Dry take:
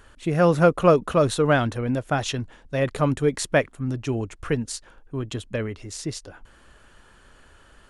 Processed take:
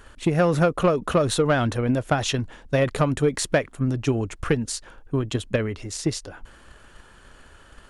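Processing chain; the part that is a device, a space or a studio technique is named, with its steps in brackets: drum-bus smash (transient shaper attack +7 dB, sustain +3 dB; compression 6:1, threshold -16 dBFS, peak gain reduction 10 dB; saturation -12 dBFS, distortion -18 dB); trim +2 dB

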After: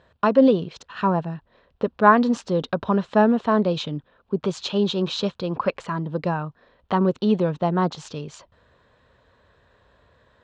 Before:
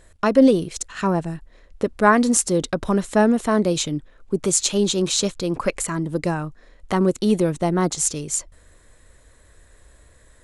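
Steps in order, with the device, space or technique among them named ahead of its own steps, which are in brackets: guitar cabinet (cabinet simulation 110–3800 Hz, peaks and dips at 320 Hz -8 dB, 980 Hz +4 dB, 2.1 kHz -9 dB)

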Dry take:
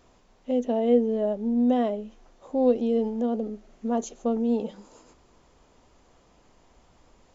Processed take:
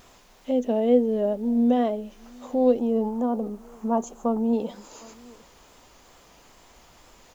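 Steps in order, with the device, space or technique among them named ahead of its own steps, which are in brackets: 2.79–4.53 s: graphic EQ 500/1000/2000/4000 Hz -4/+11/-6/-11 dB; echo from a far wall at 130 m, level -26 dB; noise-reduction cassette on a plain deck (tape noise reduction on one side only encoder only; wow and flutter; white noise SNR 40 dB); trim +1.5 dB

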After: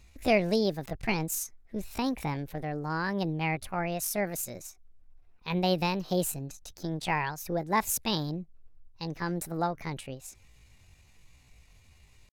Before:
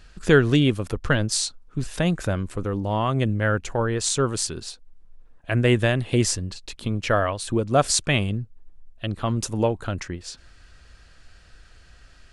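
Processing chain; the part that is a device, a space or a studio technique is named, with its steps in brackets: chipmunk voice (pitch shift +7 st); trim -8 dB

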